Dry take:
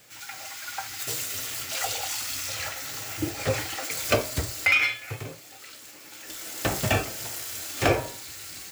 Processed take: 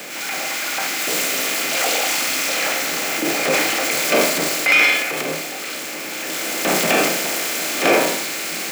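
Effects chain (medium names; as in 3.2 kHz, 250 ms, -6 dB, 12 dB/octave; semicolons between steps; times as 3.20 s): spectral levelling over time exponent 0.6; transient shaper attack -6 dB, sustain +6 dB; steep high-pass 160 Hz 72 dB/octave; trim +6 dB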